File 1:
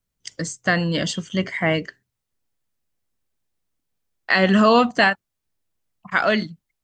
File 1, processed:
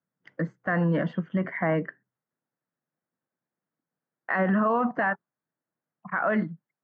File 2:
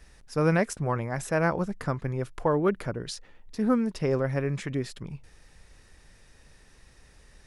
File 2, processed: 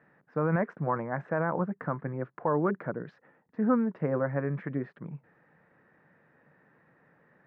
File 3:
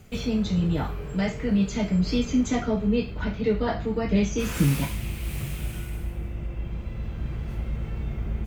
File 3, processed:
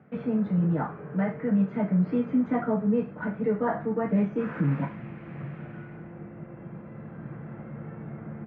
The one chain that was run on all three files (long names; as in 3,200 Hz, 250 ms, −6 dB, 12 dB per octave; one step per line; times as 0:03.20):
Chebyshev band-pass filter 150–1,700 Hz, order 3
notch filter 400 Hz, Q 12
dynamic equaliser 1,000 Hz, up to +5 dB, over −38 dBFS, Q 2.1
brickwall limiter −16.5 dBFS